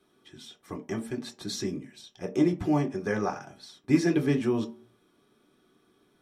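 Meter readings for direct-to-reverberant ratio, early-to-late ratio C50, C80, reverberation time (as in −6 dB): 1.5 dB, 15.5 dB, 19.5 dB, 0.45 s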